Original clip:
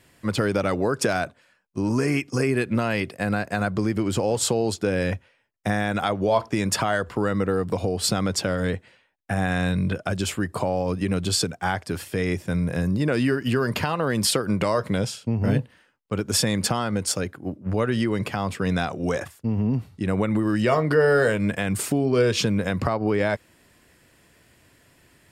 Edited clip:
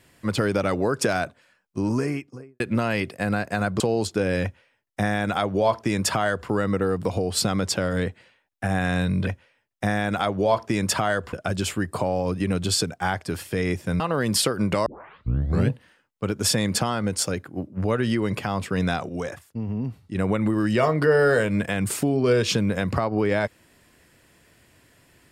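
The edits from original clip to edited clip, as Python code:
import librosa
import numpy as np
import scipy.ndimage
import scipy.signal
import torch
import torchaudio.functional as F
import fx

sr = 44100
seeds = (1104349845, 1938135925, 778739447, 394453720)

y = fx.studio_fade_out(x, sr, start_s=1.78, length_s=0.82)
y = fx.edit(y, sr, fx.cut(start_s=3.8, length_s=0.67),
    fx.duplicate(start_s=5.1, length_s=2.06, to_s=9.94),
    fx.cut(start_s=12.61, length_s=1.28),
    fx.tape_start(start_s=14.75, length_s=0.85),
    fx.clip_gain(start_s=18.98, length_s=1.06, db=-5.0), tone=tone)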